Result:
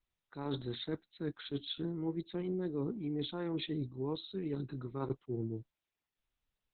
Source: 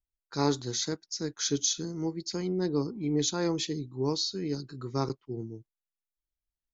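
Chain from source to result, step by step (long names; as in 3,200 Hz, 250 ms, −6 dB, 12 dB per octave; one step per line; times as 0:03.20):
Chebyshev low-pass filter 5,500 Hz, order 5
reversed playback
downward compressor 8 to 1, threshold −36 dBFS, peak gain reduction 15.5 dB
reversed playback
level +3.5 dB
Opus 8 kbit/s 48,000 Hz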